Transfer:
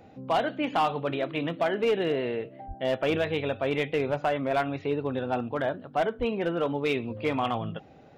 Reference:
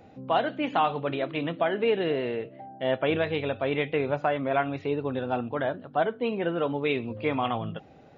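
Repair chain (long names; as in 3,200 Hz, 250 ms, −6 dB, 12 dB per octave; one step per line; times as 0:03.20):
clipped peaks rebuilt −19 dBFS
0:02.67–0:02.79: high-pass filter 140 Hz 24 dB per octave
0:06.18–0:06.30: high-pass filter 140 Hz 24 dB per octave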